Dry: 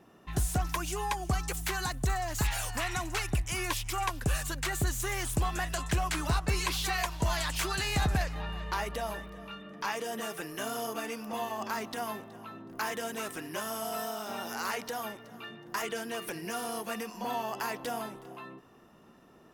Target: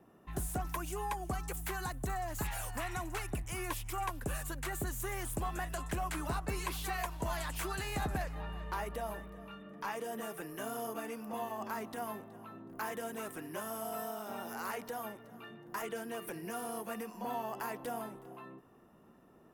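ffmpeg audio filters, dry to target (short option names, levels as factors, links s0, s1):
-filter_complex "[0:a]acrossover=split=240|7800[s0][s1][s2];[s0]asoftclip=type=tanh:threshold=0.0237[s3];[s1]lowpass=f=1400:p=1[s4];[s3][s4][s2]amix=inputs=3:normalize=0,volume=0.708"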